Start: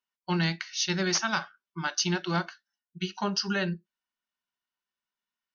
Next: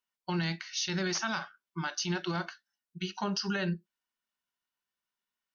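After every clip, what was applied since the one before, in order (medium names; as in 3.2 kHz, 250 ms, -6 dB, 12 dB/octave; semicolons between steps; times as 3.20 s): peak limiter -23 dBFS, peak gain reduction 8 dB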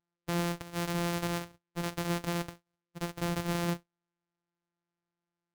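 sorted samples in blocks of 256 samples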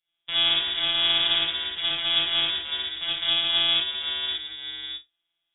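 ever faster or slower copies 93 ms, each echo -2 st, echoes 2, each echo -6 dB; gated-style reverb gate 100 ms rising, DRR -6.5 dB; frequency inversion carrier 3.6 kHz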